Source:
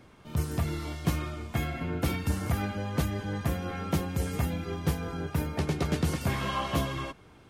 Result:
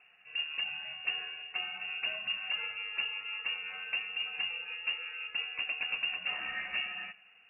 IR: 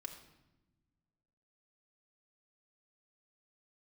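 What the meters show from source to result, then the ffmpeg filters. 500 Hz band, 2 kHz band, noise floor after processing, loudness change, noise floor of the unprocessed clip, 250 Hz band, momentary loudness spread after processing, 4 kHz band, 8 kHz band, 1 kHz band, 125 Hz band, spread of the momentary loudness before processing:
-20.5 dB, +5.5 dB, -61 dBFS, -3.0 dB, -55 dBFS, under -30 dB, 4 LU, +7.0 dB, under -40 dB, -12.5 dB, under -35 dB, 5 LU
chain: -filter_complex "[0:a]asplit=2[a][b];[1:a]atrim=start_sample=2205,adelay=90[c];[b][c]afir=irnorm=-1:irlink=0,volume=-16dB[d];[a][d]amix=inputs=2:normalize=0,lowpass=f=2.5k:t=q:w=0.5098,lowpass=f=2.5k:t=q:w=0.6013,lowpass=f=2.5k:t=q:w=0.9,lowpass=f=2.5k:t=q:w=2.563,afreqshift=-2900,volume=-7dB"

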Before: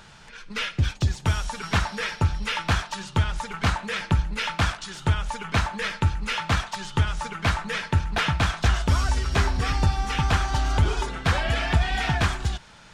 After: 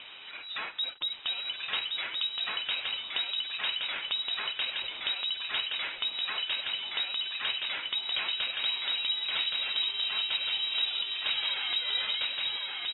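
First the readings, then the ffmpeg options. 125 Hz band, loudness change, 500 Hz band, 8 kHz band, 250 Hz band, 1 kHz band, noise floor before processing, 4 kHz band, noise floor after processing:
under -40 dB, -4.5 dB, -17.0 dB, under -40 dB, under -25 dB, -15.0 dB, -47 dBFS, +5.5 dB, -44 dBFS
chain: -af "equalizer=f=870:w=1.3:g=7.5,acompressor=threshold=-40dB:ratio=2,acrusher=bits=7:mix=0:aa=0.5,aecho=1:1:1121|2242|3363|4484:0.708|0.184|0.0479|0.0124,lowpass=f=3.3k:t=q:w=0.5098,lowpass=f=3.3k:t=q:w=0.6013,lowpass=f=3.3k:t=q:w=0.9,lowpass=f=3.3k:t=q:w=2.563,afreqshift=-3900"

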